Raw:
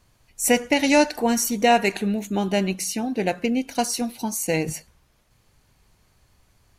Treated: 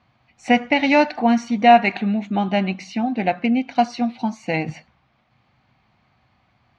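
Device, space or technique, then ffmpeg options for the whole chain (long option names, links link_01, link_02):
guitar cabinet: -af "highpass=97,equalizer=frequency=130:width_type=q:width=4:gain=4,equalizer=frequency=230:width_type=q:width=4:gain=6,equalizer=frequency=430:width_type=q:width=4:gain=-8,equalizer=frequency=750:width_type=q:width=4:gain=9,equalizer=frequency=1200:width_type=q:width=4:gain=5,equalizer=frequency=2200:width_type=q:width=4:gain=5,lowpass=frequency=4000:width=0.5412,lowpass=frequency=4000:width=1.3066"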